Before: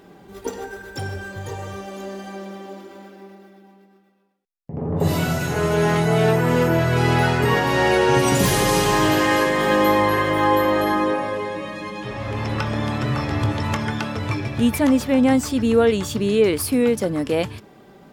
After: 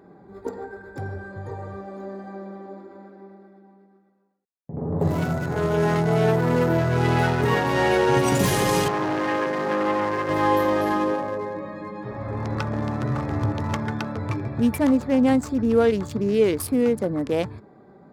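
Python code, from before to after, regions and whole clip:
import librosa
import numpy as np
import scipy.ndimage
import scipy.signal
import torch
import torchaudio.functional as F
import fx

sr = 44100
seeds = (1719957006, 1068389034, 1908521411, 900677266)

y = fx.chain(x, sr, fx.highpass(hz=190.0, slope=6),
    fx.air_absorb(metres=210.0),
    fx.transformer_sat(knee_hz=920.0), at=(8.88, 10.29))
y = fx.wiener(y, sr, points=15)
y = scipy.signal.sosfilt(scipy.signal.butter(2, 61.0, 'highpass', fs=sr, output='sos'), y)
y = y * librosa.db_to_amplitude(-2.0)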